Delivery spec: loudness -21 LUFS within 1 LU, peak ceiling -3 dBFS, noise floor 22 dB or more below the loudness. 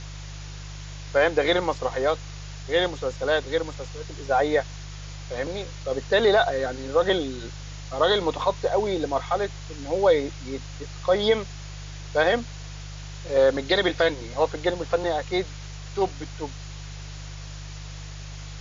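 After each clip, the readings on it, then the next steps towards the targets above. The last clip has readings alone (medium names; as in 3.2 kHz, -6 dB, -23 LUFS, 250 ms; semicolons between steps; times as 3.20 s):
hum 50 Hz; highest harmonic 150 Hz; hum level -36 dBFS; noise floor -38 dBFS; noise floor target -47 dBFS; loudness -24.5 LUFS; peak level -8.5 dBFS; loudness target -21.0 LUFS
-> de-hum 50 Hz, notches 3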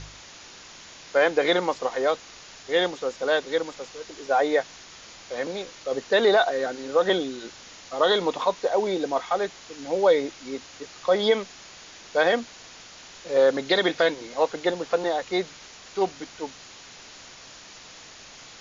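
hum not found; noise floor -46 dBFS; noise floor target -47 dBFS
-> noise print and reduce 6 dB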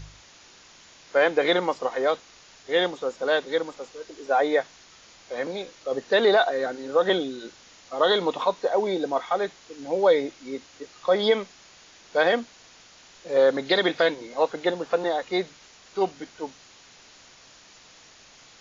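noise floor -52 dBFS; loudness -24.5 LUFS; peak level -9.0 dBFS; loudness target -21.0 LUFS
-> trim +3.5 dB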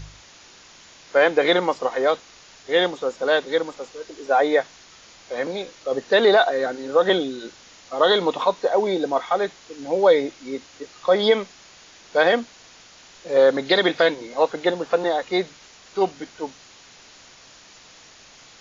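loudness -21.0 LUFS; peak level -5.5 dBFS; noise floor -49 dBFS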